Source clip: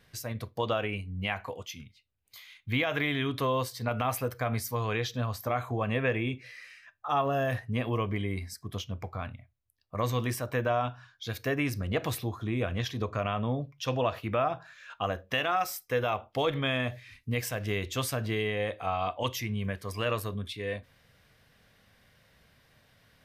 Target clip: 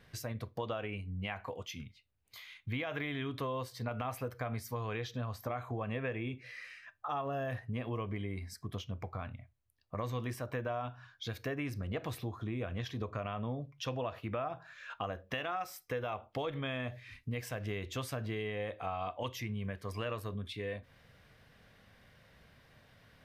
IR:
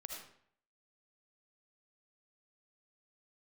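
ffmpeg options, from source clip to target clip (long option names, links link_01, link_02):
-af "highshelf=frequency=4100:gain=-8,acompressor=threshold=-41dB:ratio=2.5,volume=2dB"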